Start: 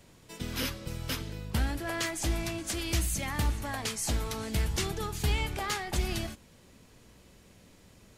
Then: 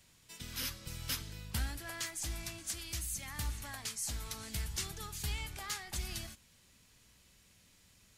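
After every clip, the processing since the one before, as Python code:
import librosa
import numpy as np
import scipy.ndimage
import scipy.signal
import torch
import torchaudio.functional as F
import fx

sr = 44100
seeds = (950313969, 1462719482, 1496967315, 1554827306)

y = fx.tone_stack(x, sr, knobs='5-5-5')
y = fx.rider(y, sr, range_db=10, speed_s=0.5)
y = fx.dynamic_eq(y, sr, hz=2800.0, q=1.1, threshold_db=-54.0, ratio=4.0, max_db=-4)
y = y * 10.0 ** (4.0 / 20.0)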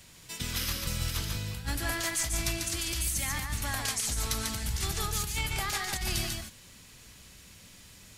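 y = fx.over_compress(x, sr, threshold_db=-40.0, ratio=-0.5)
y = y + 10.0 ** (-4.0 / 20.0) * np.pad(y, (int(144 * sr / 1000.0), 0))[:len(y)]
y = y * 10.0 ** (9.0 / 20.0)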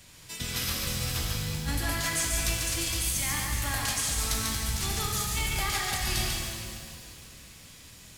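y = fx.rev_shimmer(x, sr, seeds[0], rt60_s=2.2, semitones=7, shimmer_db=-8, drr_db=1.0)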